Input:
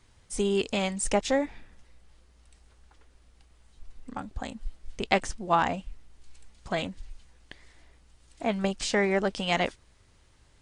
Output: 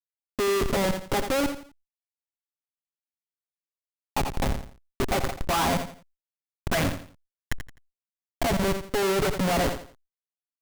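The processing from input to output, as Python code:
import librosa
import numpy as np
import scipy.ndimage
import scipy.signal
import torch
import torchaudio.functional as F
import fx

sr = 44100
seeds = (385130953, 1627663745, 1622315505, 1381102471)

p1 = scipy.signal.sosfilt(scipy.signal.butter(2, 100.0, 'highpass', fs=sr, output='sos'), x)
p2 = fx.high_shelf(p1, sr, hz=4100.0, db=7.0)
p3 = p2 + 0.54 * np.pad(p2, (int(7.3 * sr / 1000.0), 0))[:len(p2)]
p4 = fx.level_steps(p3, sr, step_db=11)
p5 = p3 + F.gain(torch.from_numpy(p4), 1.0).numpy()
p6 = fx.filter_lfo_lowpass(p5, sr, shape='saw_up', hz=0.25, low_hz=870.0, high_hz=2400.0, q=2.9)
p7 = fx.schmitt(p6, sr, flips_db=-27.5)
p8 = fx.echo_feedback(p7, sr, ms=85, feedback_pct=31, wet_db=-11.5)
y = fx.sustainer(p8, sr, db_per_s=130.0)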